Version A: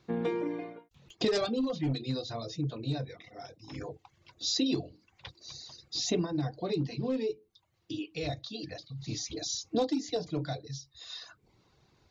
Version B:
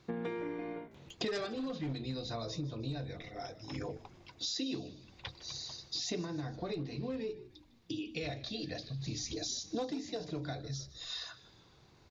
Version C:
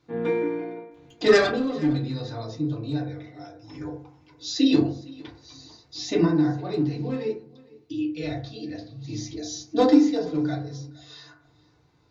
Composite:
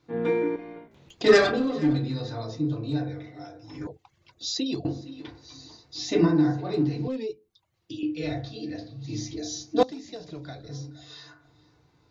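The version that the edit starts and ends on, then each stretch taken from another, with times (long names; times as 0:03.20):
C
0:00.56–0:01.24: punch in from B
0:03.87–0:04.85: punch in from A
0:07.08–0:08.03: punch in from A
0:09.83–0:10.69: punch in from B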